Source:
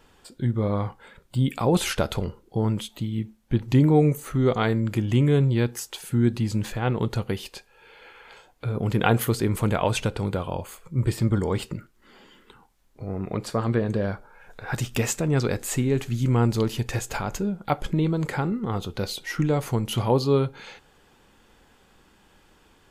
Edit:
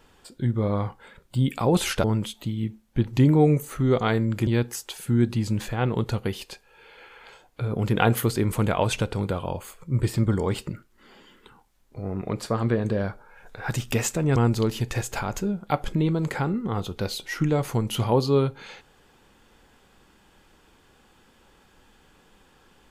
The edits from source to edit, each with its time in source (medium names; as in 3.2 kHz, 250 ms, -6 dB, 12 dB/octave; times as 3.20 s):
2.04–2.59 s: delete
5.02–5.51 s: delete
15.40–16.34 s: delete